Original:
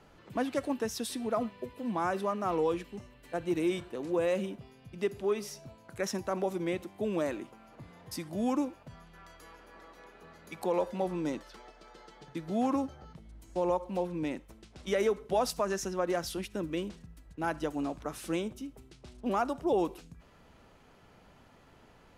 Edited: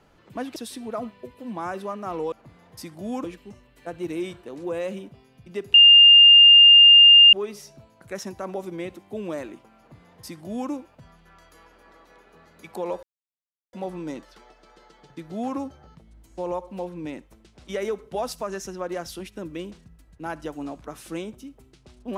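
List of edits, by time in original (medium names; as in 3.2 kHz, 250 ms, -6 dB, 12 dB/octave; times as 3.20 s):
0.56–0.95 s: delete
5.21 s: add tone 2.81 kHz -7.5 dBFS 1.59 s
7.66–8.58 s: copy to 2.71 s
10.91 s: insert silence 0.70 s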